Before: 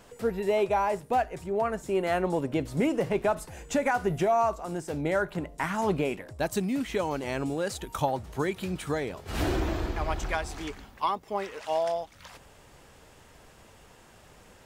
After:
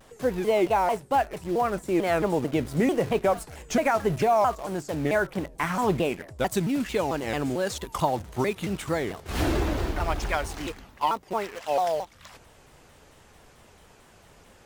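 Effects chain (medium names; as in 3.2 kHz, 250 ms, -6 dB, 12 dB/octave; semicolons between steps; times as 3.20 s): in parallel at -8.5 dB: word length cut 6-bit, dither none; on the sum: vibrato with a chosen wave saw down 4.5 Hz, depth 250 cents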